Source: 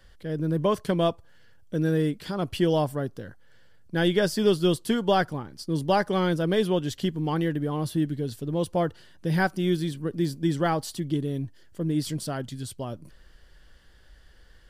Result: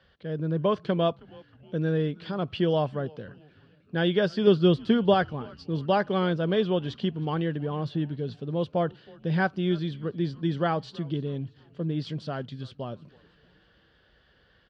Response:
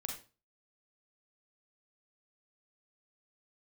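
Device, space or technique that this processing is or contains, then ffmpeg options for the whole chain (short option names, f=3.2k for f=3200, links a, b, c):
frequency-shifting delay pedal into a guitar cabinet: -filter_complex "[0:a]asettb=1/sr,asplit=3[a][b][c];[a]atrim=end=4.474[d];[b]atrim=start=4.47:end=5.14,asetpts=PTS-STARTPTS,afade=t=in:d=0.004:c=qsin,afade=t=out:st=0.666:d=0.004:c=qsin,lowshelf=f=490:g=5.5[e];[c]atrim=start=5.136[f];[d][e]acrossfade=d=0.004:c1=hsin:c2=qsin[g];[g][f]acrossfade=d=0.004:c1=qsin:c2=hsin,asplit=5[h][i][j][k][l];[i]adelay=317,afreqshift=-150,volume=-23dB[m];[j]adelay=634,afreqshift=-300,volume=-28.5dB[n];[k]adelay=951,afreqshift=-450,volume=-34dB[o];[l]adelay=1268,afreqshift=-600,volume=-39.5dB[p];[h][m][n][o][p]amix=inputs=5:normalize=0,highpass=110,equalizer=f=300:t=q:w=4:g=-6,equalizer=f=890:t=q:w=4:g=-3,equalizer=f=2k:t=q:w=4:g=-5,lowpass=f=3.9k:w=0.5412,lowpass=f=3.9k:w=1.3066"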